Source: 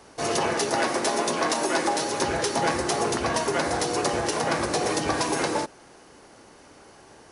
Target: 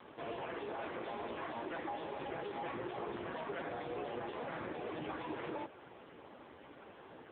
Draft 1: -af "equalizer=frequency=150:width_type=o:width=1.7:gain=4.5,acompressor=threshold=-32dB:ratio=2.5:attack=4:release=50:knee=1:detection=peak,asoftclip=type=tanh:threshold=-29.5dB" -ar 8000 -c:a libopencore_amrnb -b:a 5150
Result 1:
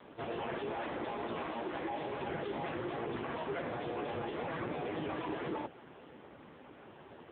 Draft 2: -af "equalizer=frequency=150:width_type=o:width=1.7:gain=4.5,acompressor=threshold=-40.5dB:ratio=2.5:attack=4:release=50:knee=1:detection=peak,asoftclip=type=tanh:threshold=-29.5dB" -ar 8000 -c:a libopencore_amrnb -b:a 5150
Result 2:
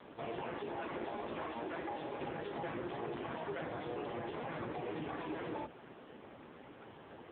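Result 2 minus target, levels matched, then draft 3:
125 Hz band +3.0 dB
-af "acompressor=threshold=-40.5dB:ratio=2.5:attack=4:release=50:knee=1:detection=peak,asoftclip=type=tanh:threshold=-29.5dB" -ar 8000 -c:a libopencore_amrnb -b:a 5150

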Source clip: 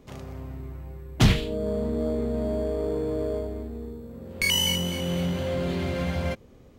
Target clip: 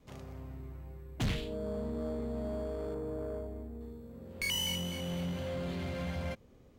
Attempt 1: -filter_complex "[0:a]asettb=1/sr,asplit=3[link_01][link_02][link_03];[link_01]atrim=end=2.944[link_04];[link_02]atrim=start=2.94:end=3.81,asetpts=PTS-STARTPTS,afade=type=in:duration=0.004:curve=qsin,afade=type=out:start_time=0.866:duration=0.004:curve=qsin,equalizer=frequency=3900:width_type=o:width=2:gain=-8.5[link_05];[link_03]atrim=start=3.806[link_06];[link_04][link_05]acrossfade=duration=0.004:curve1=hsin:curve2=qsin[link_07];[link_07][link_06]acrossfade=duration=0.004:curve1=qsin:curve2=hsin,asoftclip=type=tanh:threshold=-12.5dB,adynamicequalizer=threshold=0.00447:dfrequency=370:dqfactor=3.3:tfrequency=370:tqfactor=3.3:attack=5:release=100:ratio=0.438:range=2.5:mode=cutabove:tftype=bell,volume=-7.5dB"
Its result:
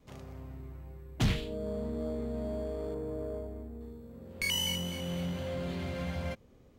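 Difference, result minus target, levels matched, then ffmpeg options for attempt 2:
soft clipping: distortion −8 dB
-filter_complex "[0:a]asettb=1/sr,asplit=3[link_01][link_02][link_03];[link_01]atrim=end=2.944[link_04];[link_02]atrim=start=2.94:end=3.81,asetpts=PTS-STARTPTS,afade=type=in:duration=0.004:curve=qsin,afade=type=out:start_time=0.866:duration=0.004:curve=qsin,equalizer=frequency=3900:width_type=o:width=2:gain=-8.5[link_05];[link_03]atrim=start=3.806[link_06];[link_04][link_05]acrossfade=duration=0.004:curve1=hsin:curve2=qsin[link_07];[link_07][link_06]acrossfade=duration=0.004:curve1=qsin:curve2=hsin,asoftclip=type=tanh:threshold=-20.5dB,adynamicequalizer=threshold=0.00447:dfrequency=370:dqfactor=3.3:tfrequency=370:tqfactor=3.3:attack=5:release=100:ratio=0.438:range=2.5:mode=cutabove:tftype=bell,volume=-7.5dB"

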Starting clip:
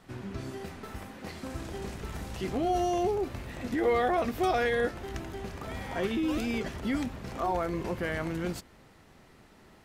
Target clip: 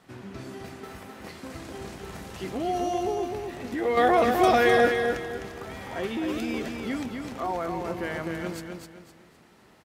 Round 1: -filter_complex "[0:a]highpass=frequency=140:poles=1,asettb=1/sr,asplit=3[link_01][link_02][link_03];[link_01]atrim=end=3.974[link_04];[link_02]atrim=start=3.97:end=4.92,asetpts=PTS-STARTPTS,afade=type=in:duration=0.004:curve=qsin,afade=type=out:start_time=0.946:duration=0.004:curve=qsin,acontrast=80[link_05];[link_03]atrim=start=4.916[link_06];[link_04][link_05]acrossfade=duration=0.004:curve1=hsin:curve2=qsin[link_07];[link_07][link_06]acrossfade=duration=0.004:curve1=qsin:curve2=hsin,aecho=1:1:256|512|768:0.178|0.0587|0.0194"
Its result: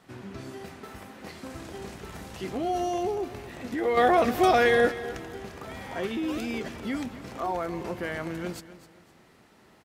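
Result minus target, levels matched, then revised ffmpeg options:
echo-to-direct −10 dB
-filter_complex "[0:a]highpass=frequency=140:poles=1,asettb=1/sr,asplit=3[link_01][link_02][link_03];[link_01]atrim=end=3.974[link_04];[link_02]atrim=start=3.97:end=4.92,asetpts=PTS-STARTPTS,afade=type=in:duration=0.004:curve=qsin,afade=type=out:start_time=0.946:duration=0.004:curve=qsin,acontrast=80[link_05];[link_03]atrim=start=4.916[link_06];[link_04][link_05]acrossfade=duration=0.004:curve1=hsin:curve2=qsin[link_07];[link_07][link_06]acrossfade=duration=0.004:curve1=qsin:curve2=hsin,aecho=1:1:256|512|768|1024:0.562|0.186|0.0612|0.0202"

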